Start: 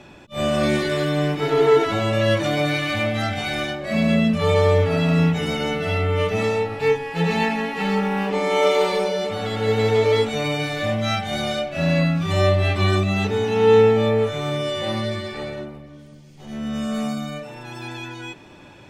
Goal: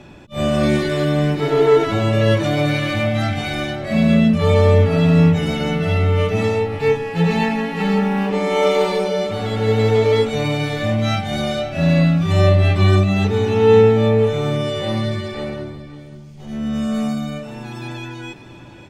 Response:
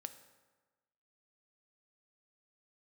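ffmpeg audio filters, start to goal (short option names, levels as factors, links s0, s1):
-filter_complex "[0:a]lowshelf=f=320:g=7,asplit=2[s0][s1];[s1]aecho=0:1:543:0.188[s2];[s0][s2]amix=inputs=2:normalize=0"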